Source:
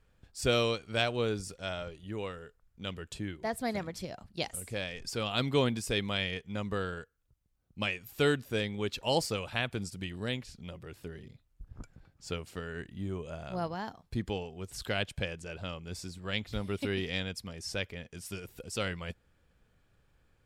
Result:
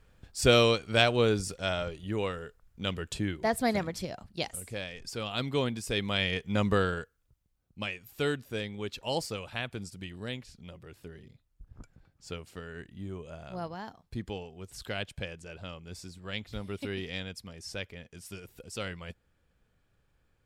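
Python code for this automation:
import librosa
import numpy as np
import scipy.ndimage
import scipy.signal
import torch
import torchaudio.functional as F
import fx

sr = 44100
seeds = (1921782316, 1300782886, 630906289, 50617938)

y = fx.gain(x, sr, db=fx.line((3.64, 6.0), (4.89, -2.0), (5.77, -2.0), (6.64, 9.0), (7.87, -3.0)))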